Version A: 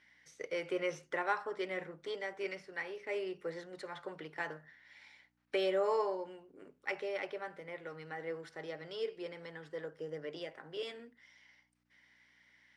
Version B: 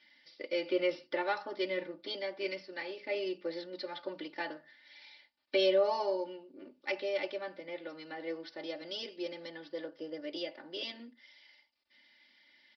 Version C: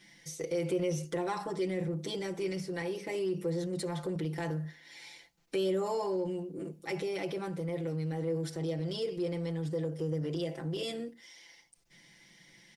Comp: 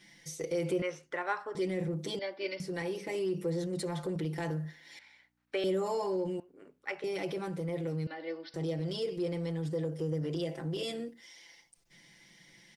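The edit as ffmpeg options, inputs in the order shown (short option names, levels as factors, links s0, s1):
-filter_complex "[0:a]asplit=3[s0][s1][s2];[1:a]asplit=2[s3][s4];[2:a]asplit=6[s5][s6][s7][s8][s9][s10];[s5]atrim=end=0.822[s11];[s0]atrim=start=0.818:end=1.552[s12];[s6]atrim=start=1.548:end=2.192[s13];[s3]atrim=start=2.188:end=2.602[s14];[s7]atrim=start=2.598:end=4.992[s15];[s1]atrim=start=4.988:end=5.642[s16];[s8]atrim=start=5.638:end=6.402[s17];[s2]atrim=start=6.398:end=7.042[s18];[s9]atrim=start=7.038:end=8.072[s19];[s4]atrim=start=8.068:end=8.542[s20];[s10]atrim=start=8.538[s21];[s11][s12]acrossfade=d=0.004:c1=hsin:c2=hsin[s22];[s22][s13]acrossfade=d=0.004:c1=hsin:c2=hsin[s23];[s23][s14]acrossfade=d=0.004:c1=hsin:c2=hsin[s24];[s24][s15]acrossfade=d=0.004:c1=hsin:c2=hsin[s25];[s25][s16]acrossfade=d=0.004:c1=hsin:c2=hsin[s26];[s26][s17]acrossfade=d=0.004:c1=hsin:c2=hsin[s27];[s27][s18]acrossfade=d=0.004:c1=hsin:c2=hsin[s28];[s28][s19]acrossfade=d=0.004:c1=hsin:c2=hsin[s29];[s29][s20]acrossfade=d=0.004:c1=hsin:c2=hsin[s30];[s30][s21]acrossfade=d=0.004:c1=hsin:c2=hsin"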